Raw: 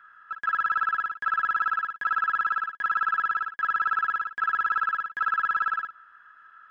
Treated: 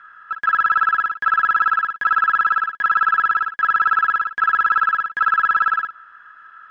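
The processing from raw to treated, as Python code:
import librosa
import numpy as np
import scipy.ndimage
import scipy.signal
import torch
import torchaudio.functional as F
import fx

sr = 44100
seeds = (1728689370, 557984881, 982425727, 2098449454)

y = scipy.signal.sosfilt(scipy.signal.butter(2, 7000.0, 'lowpass', fs=sr, output='sos'), x)
y = y * librosa.db_to_amplitude(8.5)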